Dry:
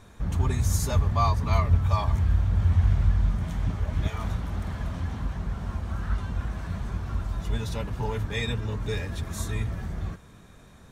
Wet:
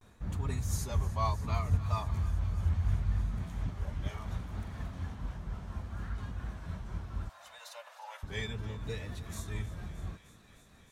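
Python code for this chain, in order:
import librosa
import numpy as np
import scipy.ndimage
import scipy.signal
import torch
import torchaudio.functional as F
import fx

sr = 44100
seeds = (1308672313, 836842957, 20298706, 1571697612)

p1 = fx.tremolo_shape(x, sr, shape='triangle', hz=4.2, depth_pct=40)
p2 = fx.vibrato(p1, sr, rate_hz=0.69, depth_cents=89.0)
p3 = fx.steep_highpass(p2, sr, hz=540.0, slope=96, at=(7.29, 8.23))
p4 = p3 + fx.echo_thinned(p3, sr, ms=308, feedback_pct=84, hz=840.0, wet_db=-16.5, dry=0)
y = p4 * librosa.db_to_amplitude(-7.0)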